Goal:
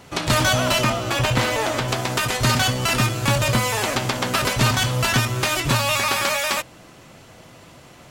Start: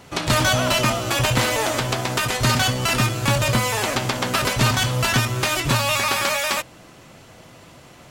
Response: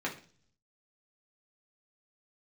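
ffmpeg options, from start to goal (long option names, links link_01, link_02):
-filter_complex "[0:a]asettb=1/sr,asplit=3[link_01][link_02][link_03];[link_01]atrim=end=0.844[link_04];[link_02]atrim=start=0.84:end=1.88,asetpts=PTS-STARTPTS,afade=type=in:duration=0.004:curve=qsin,afade=type=out:start_time=1.036:duration=0.004:curve=qsin,equalizer=frequency=12000:width=0.41:gain=-6.5[link_05];[link_03]atrim=start=1.876[link_06];[link_04][link_05]acrossfade=duration=0.004:curve1=hsin:curve2=qsin[link_07];[link_07][link_06]acrossfade=duration=0.004:curve1=qsin:curve2=hsin"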